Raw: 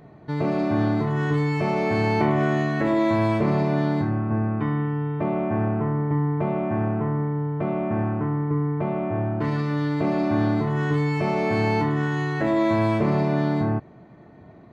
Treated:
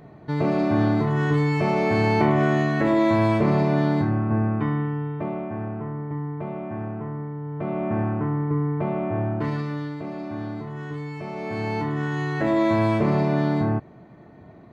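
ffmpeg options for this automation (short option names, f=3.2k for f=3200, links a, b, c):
-af "volume=19dB,afade=t=out:st=4.47:d=1.06:silence=0.375837,afade=t=in:st=7.41:d=0.48:silence=0.446684,afade=t=out:st=9.32:d=0.7:silence=0.316228,afade=t=in:st=11.3:d=1.22:silence=0.298538"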